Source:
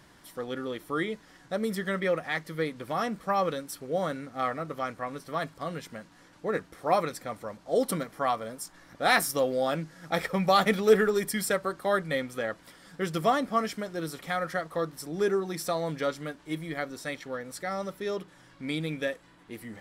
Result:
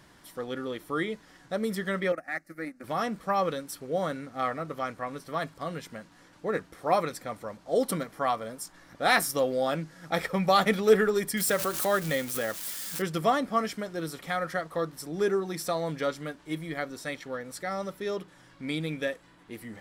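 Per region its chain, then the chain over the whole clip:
0:02.12–0:02.84: phaser with its sweep stopped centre 660 Hz, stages 8 + transient designer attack −3 dB, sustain −11 dB
0:11.37–0:13.02: spike at every zero crossing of −28.5 dBFS + background raised ahead of every attack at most 73 dB per second
whole clip: no processing

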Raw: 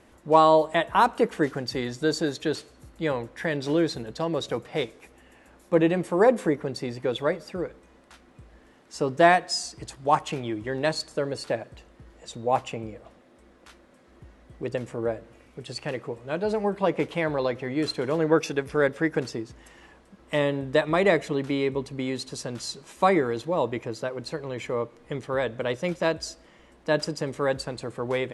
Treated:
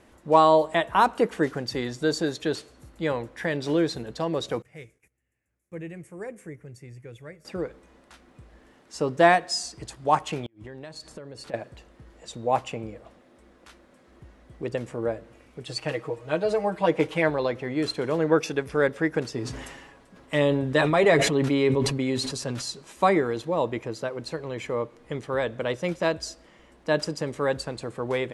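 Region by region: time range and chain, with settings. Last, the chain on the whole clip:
0:04.62–0:07.45: high-pass filter 99 Hz + noise gate −52 dBFS, range −13 dB + drawn EQ curve 110 Hz 0 dB, 230 Hz −18 dB, 410 Hz −17 dB, 960 Hz −25 dB, 2,200 Hz −10 dB, 3,900 Hz −26 dB, 6,500 Hz −10 dB, 11,000 Hz −7 dB
0:10.46–0:11.54: bass and treble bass +4 dB, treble −1 dB + downward compressor 8 to 1, threshold −37 dBFS + gate with flip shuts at −27 dBFS, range −28 dB
0:15.66–0:17.30: parametric band 190 Hz −4 dB 1.4 octaves + comb filter 6.4 ms, depth 90%
0:19.33–0:22.70: comb filter 7.3 ms, depth 48% + level that may fall only so fast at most 41 dB per second
whole clip: no processing

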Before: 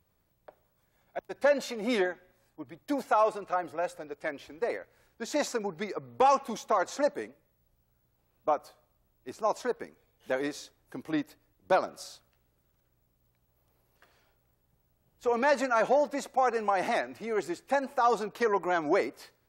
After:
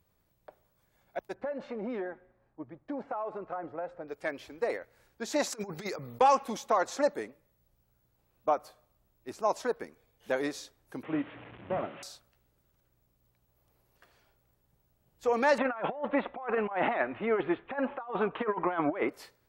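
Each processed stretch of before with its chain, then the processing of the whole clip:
0:01.34–0:04.08: low-pass filter 1,400 Hz + downward compressor, threshold −32 dBFS
0:05.50–0:06.21: high-shelf EQ 3,500 Hz +10.5 dB + compressor whose output falls as the input rises −37 dBFS, ratio −0.5
0:11.03–0:12.03: linear delta modulator 16 kbit/s, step −41.5 dBFS + high-pass filter 84 Hz 24 dB per octave + double-tracking delay 18 ms −12 dB
0:15.58–0:19.09: Butterworth low-pass 3,400 Hz 72 dB per octave + parametric band 1,100 Hz +5.5 dB 0.92 octaves + compressor whose output falls as the input rises −29 dBFS, ratio −0.5
whole clip: no processing

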